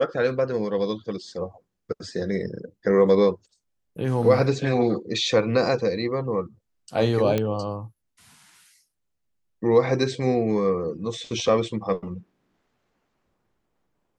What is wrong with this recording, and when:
7.38 pop -11 dBFS

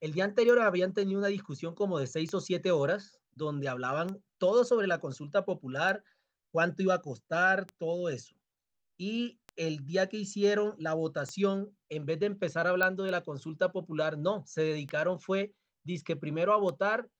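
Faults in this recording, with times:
tick 33 1/3 rpm -25 dBFS
12.83 pop -14 dBFS

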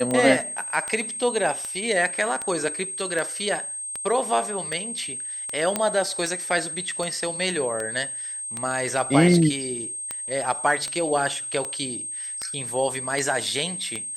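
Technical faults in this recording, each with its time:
tick 78 rpm -15 dBFS
tone 8400 Hz -30 dBFS
5.76 pop -8 dBFS

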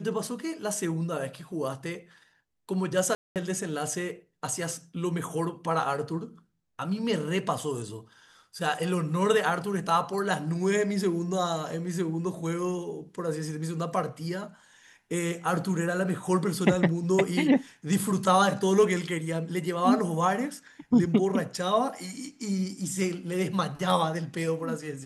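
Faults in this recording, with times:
3.15–3.36 gap 0.208 s

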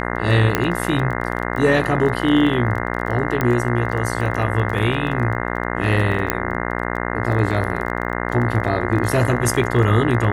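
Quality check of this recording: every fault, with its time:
buzz 60 Hz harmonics 35 -24 dBFS
crackle 17/s -26 dBFS
0.55 pop -2 dBFS
3.41 pop -7 dBFS
6.3 pop -2 dBFS

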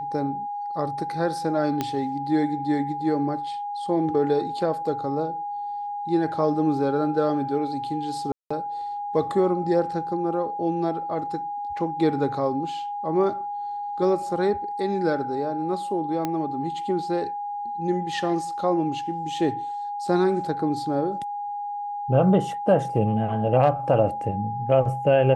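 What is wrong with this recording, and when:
tone 820 Hz -28 dBFS
1.81 pop -11 dBFS
8.32–8.51 gap 0.185 s
16.25 pop -13 dBFS

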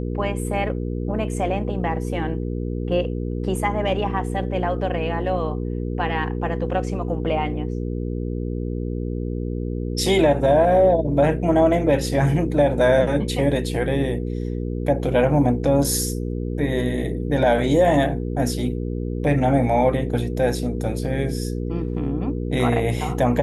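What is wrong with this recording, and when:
hum 60 Hz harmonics 8 -26 dBFS

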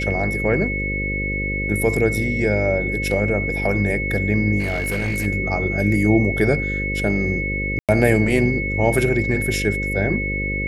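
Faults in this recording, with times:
buzz 50 Hz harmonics 11 -26 dBFS
tone 2200 Hz -24 dBFS
4.59–5.27 clipped -18.5 dBFS
7.79–7.89 gap 97 ms

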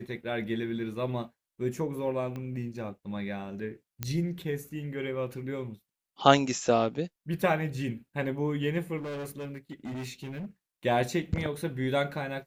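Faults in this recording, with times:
2.36 pop -26 dBFS
4.03 pop -15 dBFS
8.97–10.46 clipped -34 dBFS

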